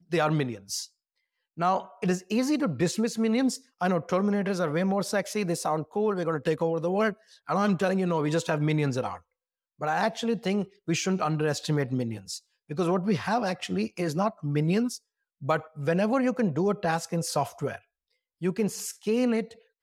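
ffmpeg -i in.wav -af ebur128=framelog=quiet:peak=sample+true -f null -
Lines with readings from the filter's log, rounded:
Integrated loudness:
  I:         -27.8 LUFS
  Threshold: -38.1 LUFS
Loudness range:
  LRA:         2.0 LU
  Threshold: -48.1 LUFS
  LRA low:   -29.0 LUFS
  LRA high:  -27.0 LUFS
Sample peak:
  Peak:      -12.4 dBFS
True peak:
  Peak:      -12.4 dBFS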